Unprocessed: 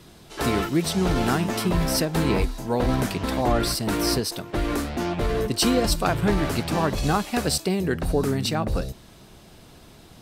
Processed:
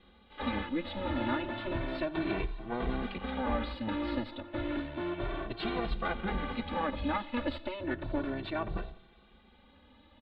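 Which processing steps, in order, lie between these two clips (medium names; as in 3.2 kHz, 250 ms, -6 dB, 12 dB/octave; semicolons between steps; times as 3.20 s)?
comb filter that takes the minimum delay 3.4 ms; elliptic low-pass 3.7 kHz, stop band 40 dB; on a send: feedback delay 89 ms, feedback 56%, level -21.5 dB; on the sum: endless flanger 2.1 ms +0.32 Hz; trim -5.5 dB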